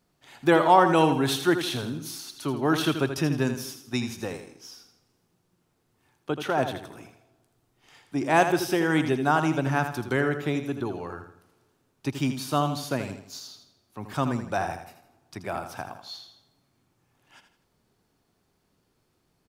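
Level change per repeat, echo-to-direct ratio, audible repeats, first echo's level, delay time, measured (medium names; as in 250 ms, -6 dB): -8.0 dB, -8.5 dB, 3, -9.0 dB, 81 ms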